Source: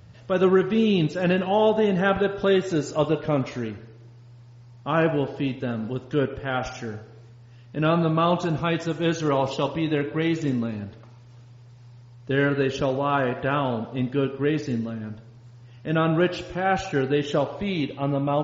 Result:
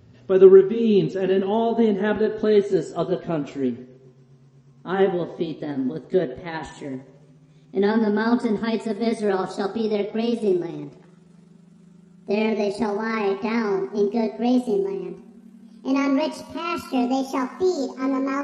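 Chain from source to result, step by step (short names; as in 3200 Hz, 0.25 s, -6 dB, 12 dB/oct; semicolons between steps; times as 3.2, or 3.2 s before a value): gliding pitch shift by +11 st starting unshifted; small resonant body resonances 250/380 Hz, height 17 dB, ringing for 95 ms; gain -4.5 dB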